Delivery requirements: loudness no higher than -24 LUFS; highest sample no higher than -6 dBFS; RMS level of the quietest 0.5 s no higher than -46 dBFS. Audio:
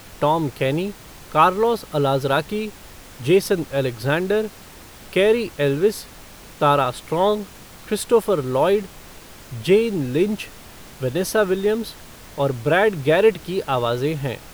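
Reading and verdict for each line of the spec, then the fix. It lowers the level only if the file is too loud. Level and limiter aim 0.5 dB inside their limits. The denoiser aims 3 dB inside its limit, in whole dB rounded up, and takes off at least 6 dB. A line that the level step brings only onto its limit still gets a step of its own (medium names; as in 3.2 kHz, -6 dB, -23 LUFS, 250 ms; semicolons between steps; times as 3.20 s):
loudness -20.5 LUFS: fail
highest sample -3.5 dBFS: fail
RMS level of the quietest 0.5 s -42 dBFS: fail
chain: noise reduction 6 dB, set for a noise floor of -42 dBFS; trim -4 dB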